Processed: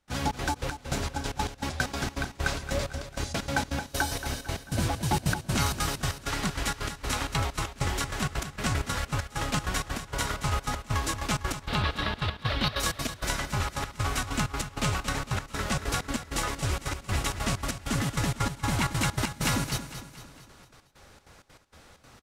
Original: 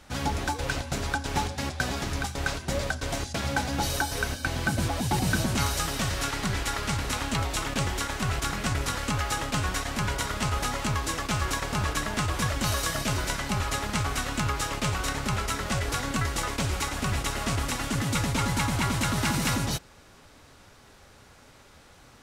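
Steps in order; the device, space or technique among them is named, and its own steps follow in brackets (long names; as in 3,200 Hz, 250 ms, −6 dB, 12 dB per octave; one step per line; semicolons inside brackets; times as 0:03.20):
0:11.63–0:12.80: high shelf with overshoot 5,300 Hz −11.5 dB, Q 3
trance gate with a delay (gate pattern ".xxx.xx.x." 194 BPM −24 dB; repeating echo 227 ms, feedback 48%, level −11 dB)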